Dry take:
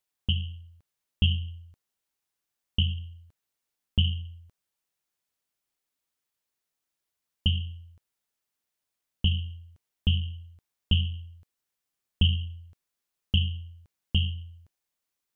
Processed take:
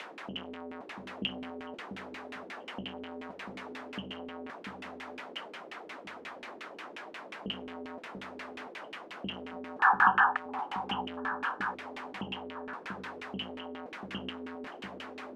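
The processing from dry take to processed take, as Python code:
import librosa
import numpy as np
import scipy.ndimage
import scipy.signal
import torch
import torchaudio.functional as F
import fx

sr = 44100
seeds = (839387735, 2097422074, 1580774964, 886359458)

p1 = x + 0.5 * 10.0 ** (-29.0 / 20.0) * np.sign(x)
p2 = scipy.signal.sosfilt(scipy.signal.butter(4, 220.0, 'highpass', fs=sr, output='sos'), p1)
p3 = 10.0 ** (-28.5 / 20.0) * np.tanh(p2 / 10.0 ** (-28.5 / 20.0))
p4 = p2 + F.gain(torch.from_numpy(p3), -5.0).numpy()
p5 = fx.spec_paint(p4, sr, seeds[0], shape='noise', start_s=9.79, length_s=0.58, low_hz=740.0, high_hz=1800.0, level_db=-20.0)
p6 = p5 + fx.echo_alternate(p5, sr, ms=690, hz=840.0, feedback_pct=54, wet_db=-5, dry=0)
p7 = fx.filter_lfo_lowpass(p6, sr, shape='saw_down', hz=5.6, low_hz=310.0, high_hz=2700.0, q=2.1)
y = F.gain(torch.from_numpy(p7), -5.5).numpy()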